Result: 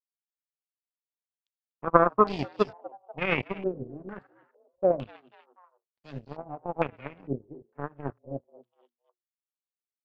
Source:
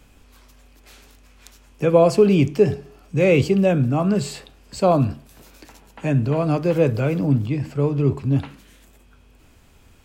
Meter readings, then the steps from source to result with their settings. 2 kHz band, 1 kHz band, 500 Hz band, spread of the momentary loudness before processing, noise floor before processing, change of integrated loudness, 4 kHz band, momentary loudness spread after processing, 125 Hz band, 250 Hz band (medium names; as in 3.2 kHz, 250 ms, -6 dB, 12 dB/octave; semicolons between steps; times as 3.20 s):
-4.0 dB, -1.5 dB, -10.5 dB, 11 LU, -52 dBFS, -9.5 dB, -9.5 dB, 21 LU, -19.5 dB, -15.0 dB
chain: power-law waveshaper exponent 3; frequency-shifting echo 244 ms, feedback 44%, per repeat +120 Hz, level -21.5 dB; step-sequenced low-pass 2.2 Hz 400–4700 Hz; trim -1 dB